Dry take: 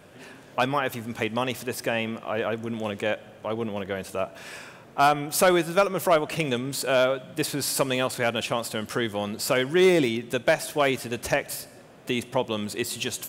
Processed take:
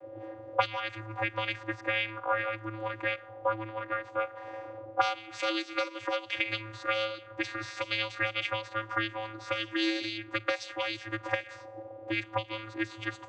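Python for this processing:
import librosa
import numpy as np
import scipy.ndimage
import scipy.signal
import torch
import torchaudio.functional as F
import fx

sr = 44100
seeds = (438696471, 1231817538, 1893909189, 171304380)

y = fx.auto_wah(x, sr, base_hz=520.0, top_hz=4100.0, q=2.6, full_db=-19.5, direction='up')
y = fx.vocoder(y, sr, bands=16, carrier='square', carrier_hz=109.0)
y = y * librosa.db_to_amplitude(7.0)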